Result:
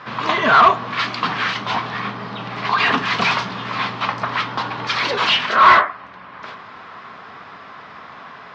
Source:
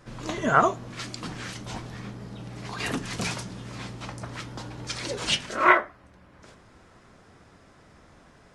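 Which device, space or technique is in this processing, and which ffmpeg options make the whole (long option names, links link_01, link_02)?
overdrive pedal into a guitar cabinet: -filter_complex "[0:a]asplit=2[link_01][link_02];[link_02]highpass=frequency=720:poles=1,volume=29dB,asoftclip=type=tanh:threshold=-2.5dB[link_03];[link_01][link_03]amix=inputs=2:normalize=0,lowpass=frequency=4600:poles=1,volume=-6dB,highpass=87,equalizer=frequency=330:width_type=q:width=4:gain=-8,equalizer=frequency=540:width_type=q:width=4:gain=-6,equalizer=frequency=1100:width_type=q:width=4:gain=7,lowpass=frequency=4200:width=0.5412,lowpass=frequency=4200:width=1.3066,volume=-3dB"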